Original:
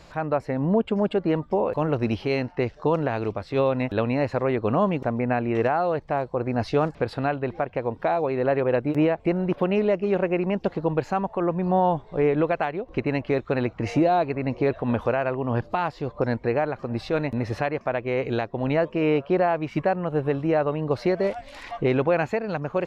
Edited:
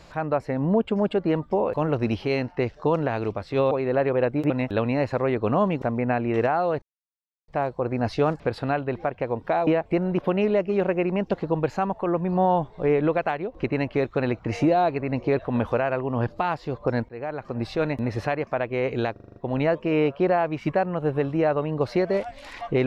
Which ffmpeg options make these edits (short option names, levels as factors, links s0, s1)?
-filter_complex "[0:a]asplit=12[s0][s1][s2][s3][s4][s5][s6][s7][s8][s9][s10][s11];[s0]atrim=end=3.712[s12];[s1]atrim=start=8.218:end=9.012[s13];[s2]atrim=start=3.708:end=6.03,asetpts=PTS-STARTPTS,afade=t=out:st=2.318:d=0.004:c=hsin,apad=pad_dur=0.66[s14];[s3]atrim=start=6.03:end=8.222,asetpts=PTS-STARTPTS,afade=t=in:d=0.004:c=hsin[s15];[s4]atrim=start=9.008:end=16.43,asetpts=PTS-STARTPTS,afade=t=out:st=7.418:d=0.004:c=hsin:silence=0.0794328[s16];[s5]atrim=start=16.43:end=18.502,asetpts=PTS-STARTPTS,afade=t=in:d=0.46:silence=0.0794328[s17];[s6]atrim=start=18.458:end=18.502[s18];[s7]atrim=start=18.458:end=18.502[s19];[s8]atrim=start=18.458:end=18.502[s20];[s9]atrim=start=18.458:end=18.502[s21];[s10]atrim=start=18.458:end=18.502[s22];[s11]atrim=start=18.458[s23];[s12][s13]acrossfade=d=0.004:c1=hsin:c2=hsin[s24];[s14][s15]concat=n=2:v=0:a=1[s25];[s24][s25]acrossfade=d=0.004:c1=hsin:c2=hsin[s26];[s16][s17]concat=n=2:v=0:a=1[s27];[s26][s27]acrossfade=d=0.004:c1=hsin:c2=hsin[s28];[s28][s18]acrossfade=d=0.004:c1=hsin:c2=hsin[s29];[s29][s19]acrossfade=d=0.004:c1=hsin:c2=hsin[s30];[s30][s20]acrossfade=d=0.004:c1=hsin:c2=hsin[s31];[s31][s21]acrossfade=d=0.004:c1=hsin:c2=hsin[s32];[s32][s22]acrossfade=d=0.004:c1=hsin:c2=hsin[s33];[s33][s23]acrossfade=d=0.004:c1=hsin:c2=hsin"